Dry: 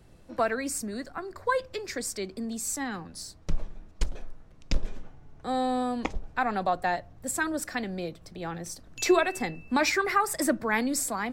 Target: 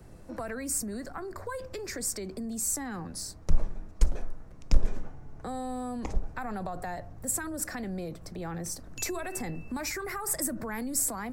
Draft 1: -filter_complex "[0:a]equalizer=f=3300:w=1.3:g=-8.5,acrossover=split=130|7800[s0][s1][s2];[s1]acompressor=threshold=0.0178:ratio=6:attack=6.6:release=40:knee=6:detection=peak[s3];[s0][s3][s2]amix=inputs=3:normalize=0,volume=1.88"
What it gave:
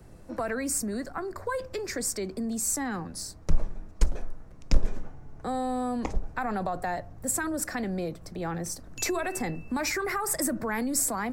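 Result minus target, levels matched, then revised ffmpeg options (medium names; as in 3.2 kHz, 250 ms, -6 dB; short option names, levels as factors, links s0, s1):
compression: peak gain reduction -6.5 dB
-filter_complex "[0:a]equalizer=f=3300:w=1.3:g=-8.5,acrossover=split=130|7800[s0][s1][s2];[s1]acompressor=threshold=0.0075:ratio=6:attack=6.6:release=40:knee=6:detection=peak[s3];[s0][s3][s2]amix=inputs=3:normalize=0,volume=1.88"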